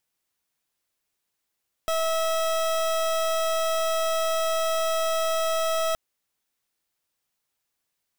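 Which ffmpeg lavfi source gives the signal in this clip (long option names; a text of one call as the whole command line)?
ffmpeg -f lavfi -i "aevalsrc='0.0596*(2*lt(mod(649*t,1),0.29)-1)':duration=4.07:sample_rate=44100" out.wav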